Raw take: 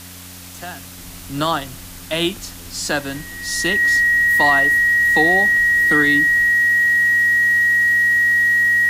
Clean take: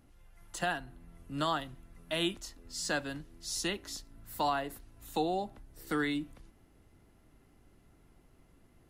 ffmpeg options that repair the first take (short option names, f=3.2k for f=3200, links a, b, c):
-af "bandreject=f=90.1:t=h:w=4,bandreject=f=180.2:t=h:w=4,bandreject=f=270.3:t=h:w=4,bandreject=f=1.9k:w=30,afwtdn=0.014,asetnsamples=n=441:p=0,asendcmd='0.98 volume volume -12dB',volume=0dB"